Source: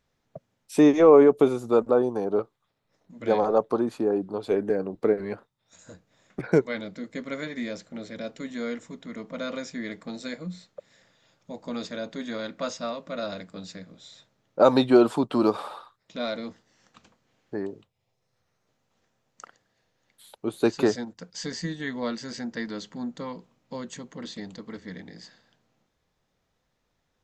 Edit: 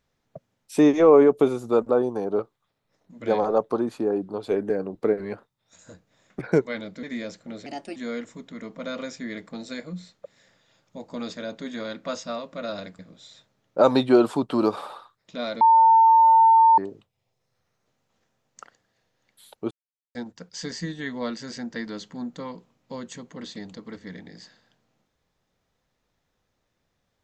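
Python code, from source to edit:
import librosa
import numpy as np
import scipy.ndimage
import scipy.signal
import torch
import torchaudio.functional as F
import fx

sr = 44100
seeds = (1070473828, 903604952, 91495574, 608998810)

y = fx.edit(x, sr, fx.cut(start_s=7.03, length_s=0.46),
    fx.speed_span(start_s=8.12, length_s=0.38, speed=1.27),
    fx.cut(start_s=13.53, length_s=0.27),
    fx.bleep(start_s=16.42, length_s=1.17, hz=901.0, db=-11.5),
    fx.silence(start_s=20.52, length_s=0.44), tone=tone)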